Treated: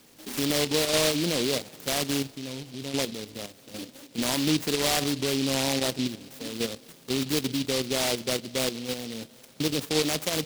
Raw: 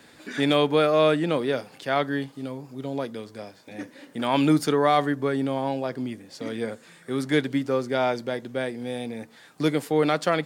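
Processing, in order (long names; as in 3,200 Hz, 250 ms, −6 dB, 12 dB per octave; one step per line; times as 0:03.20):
output level in coarse steps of 10 dB
brickwall limiter −19.5 dBFS, peak gain reduction 9.5 dB
on a send at −21.5 dB: convolution reverb RT60 4.9 s, pre-delay 23 ms
on the sum: short delay modulated by noise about 3,600 Hz, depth 0.22 ms
level +4 dB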